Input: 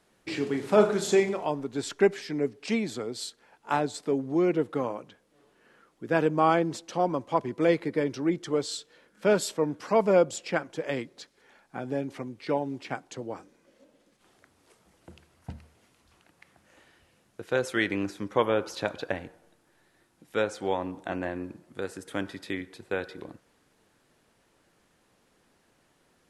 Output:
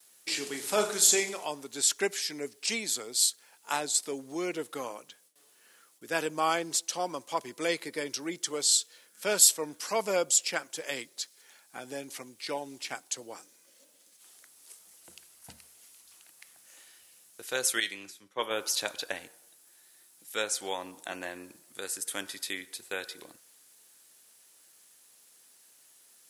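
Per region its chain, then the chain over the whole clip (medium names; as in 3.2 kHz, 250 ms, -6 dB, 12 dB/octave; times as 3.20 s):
17.80–18.51 s: peaking EQ 3.4 kHz +5 dB 0.67 oct + feedback comb 190 Hz, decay 0.51 s + three bands expanded up and down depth 100%
whole clip: RIAA curve recording; gate with hold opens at -55 dBFS; treble shelf 3.2 kHz +11 dB; trim -5.5 dB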